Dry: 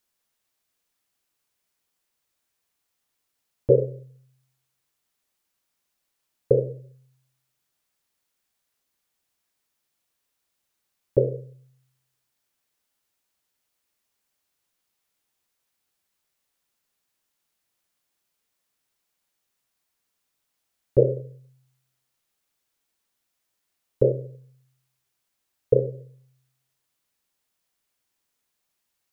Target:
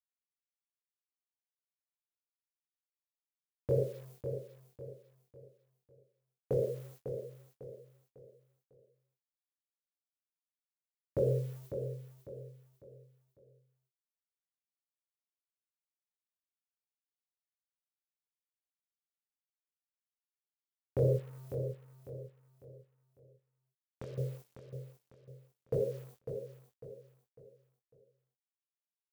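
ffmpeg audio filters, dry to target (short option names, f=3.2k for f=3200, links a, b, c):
-filter_complex "[0:a]highpass=f=47:w=0.5412,highpass=f=47:w=1.3066,aemphasis=mode=production:type=50kf,agate=range=-33dB:threshold=-52dB:ratio=3:detection=peak,equalizer=f=280:w=1.6:g=-7.5,dynaudnorm=f=570:g=17:m=11dB,alimiter=limit=-19dB:level=0:latency=1:release=11,asettb=1/sr,asplit=3[a][b][c];[a]atrim=end=21.164[d];[b]atrim=start=21.16:end=24.18,asetpts=PTS-STARTPTS,afade=t=in:d=0.004:c=qsin,afade=t=out:st=3.016:d=0.004:c=qsin,acompressor=threshold=-40dB:ratio=16[e];[c]atrim=start=24.176[f];[d][e]acrossfade=d=0.004:c1=hsin:c2=qsin[g];[g][f]acrossfade=d=0.004:c1=qsin:c2=hsin,flanger=delay=18:depth=6.6:speed=0.73,acrusher=bits=8:mix=0:aa=0.5,aecho=1:1:550|1100|1650|2200:0.376|0.139|0.0515|0.019"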